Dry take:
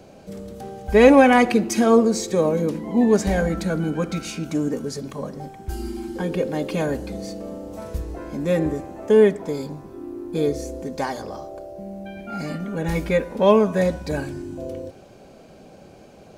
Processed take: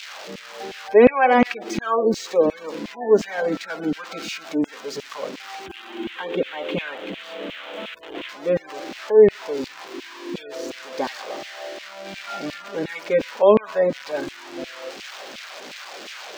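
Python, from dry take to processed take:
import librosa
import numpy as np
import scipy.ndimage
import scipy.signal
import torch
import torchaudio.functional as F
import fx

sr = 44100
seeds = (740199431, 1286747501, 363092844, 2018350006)

y = x + 0.5 * 10.0 ** (-13.5 / 20.0) * np.diff(np.sign(x), prepend=np.sign(x[:1]))
y = fx.spec_gate(y, sr, threshold_db=-30, keep='strong')
y = fx.high_shelf_res(y, sr, hz=4000.0, db=-7.5, q=3.0, at=(5.66, 8.29))
y = fx.filter_lfo_highpass(y, sr, shape='saw_down', hz=2.8, low_hz=220.0, high_hz=2700.0, q=1.8)
y = fx.air_absorb(y, sr, metres=200.0)
y = y * librosa.db_to_amplitude(-1.0)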